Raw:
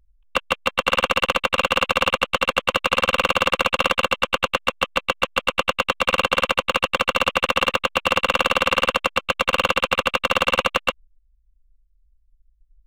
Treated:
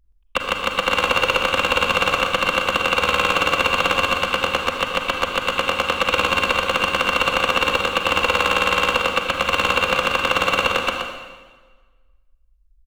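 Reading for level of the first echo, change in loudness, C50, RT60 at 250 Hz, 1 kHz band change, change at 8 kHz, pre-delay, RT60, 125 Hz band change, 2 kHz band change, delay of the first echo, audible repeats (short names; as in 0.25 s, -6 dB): -6.5 dB, +1.5 dB, 2.0 dB, 1.4 s, +1.5 dB, +1.5 dB, 34 ms, 1.4 s, +2.5 dB, +2.0 dB, 0.123 s, 1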